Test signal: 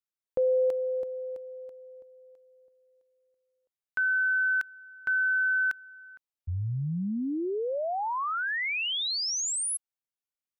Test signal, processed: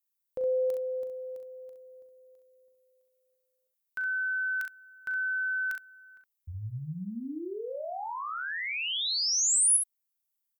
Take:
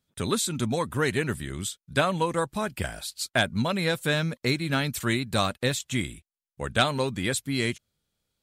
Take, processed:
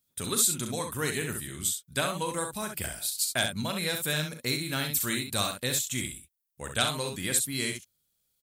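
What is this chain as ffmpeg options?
-af "aemphasis=mode=production:type=75fm,aecho=1:1:39|66:0.335|0.473,volume=0.447"

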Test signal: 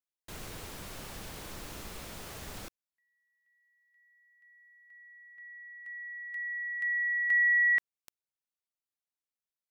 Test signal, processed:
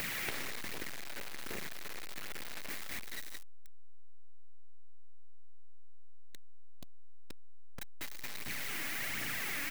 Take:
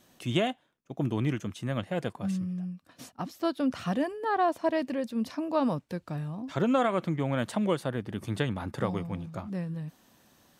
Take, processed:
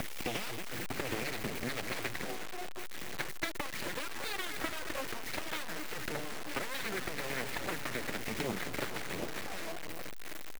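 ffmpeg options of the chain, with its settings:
-filter_complex "[0:a]aeval=exprs='val(0)+0.5*0.0168*sgn(val(0))':c=same,asplit=2[s0][s1];[s1]aecho=0:1:695:0.0891[s2];[s0][s2]amix=inputs=2:normalize=0,aeval=exprs='abs(val(0))':c=same,acrossover=split=180|1400|6100[s3][s4][s5][s6];[s3]acompressor=threshold=0.0224:ratio=10[s7];[s4]acompressor=threshold=0.00794:ratio=3[s8];[s5]acompressor=threshold=0.00562:ratio=5[s9];[s6]acompressor=threshold=0.002:ratio=8[s10];[s7][s8][s9][s10]amix=inputs=4:normalize=0,asplit=2[s11][s12];[s12]adelay=226,lowpass=f=2700:p=1,volume=0.376,asplit=2[s13][s14];[s14]adelay=226,lowpass=f=2700:p=1,volume=0.52,asplit=2[s15][s16];[s16]adelay=226,lowpass=f=2700:p=1,volume=0.52,asplit=2[s17][s18];[s18]adelay=226,lowpass=f=2700:p=1,volume=0.52,asplit=2[s19][s20];[s20]adelay=226,lowpass=f=2700:p=1,volume=0.52,asplit=2[s21][s22];[s22]adelay=226,lowpass=f=2700:p=1,volume=0.52[s23];[s13][s15][s17][s19][s21][s23]amix=inputs=6:normalize=0[s24];[s11][s24]amix=inputs=2:normalize=0,aphaser=in_gain=1:out_gain=1:delay=3.7:decay=0.48:speed=1.3:type=triangular,acompressor=threshold=0.0126:ratio=16:attack=30:release=112:knee=6:detection=peak,equalizer=f=125:t=o:w=1:g=9,equalizer=f=250:t=o:w=1:g=7,equalizer=f=500:t=o:w=1:g=-4,equalizer=f=1000:t=o:w=1:g=-7,equalizer=f=2000:t=o:w=1:g=12,equalizer=f=4000:t=o:w=1:g=-8,equalizer=f=8000:t=o:w=1:g=-12,aeval=exprs='0.0398*(cos(1*acos(clip(val(0)/0.0398,-1,1)))-cos(1*PI/2))+0.00126*(cos(3*acos(clip(val(0)/0.0398,-1,1)))-cos(3*PI/2))+0.0141*(cos(8*acos(clip(val(0)/0.0398,-1,1)))-cos(8*PI/2))':c=same,acrusher=bits=7:mix=0:aa=0.000001,lowshelf=f=180:g=-10.5,volume=2.66"

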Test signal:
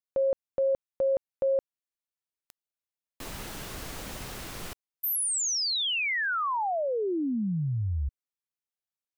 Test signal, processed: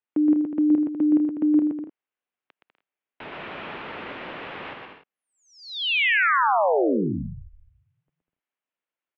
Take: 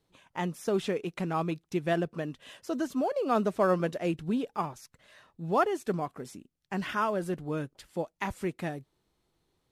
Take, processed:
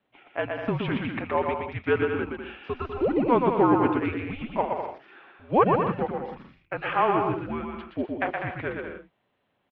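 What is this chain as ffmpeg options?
-af "aecho=1:1:120|198|248.7|281.7|303.1:0.631|0.398|0.251|0.158|0.1,highpass=f=480:t=q:w=0.5412,highpass=f=480:t=q:w=1.307,lowpass=f=3200:t=q:w=0.5176,lowpass=f=3200:t=q:w=0.7071,lowpass=f=3200:t=q:w=1.932,afreqshift=-240,volume=2.11"

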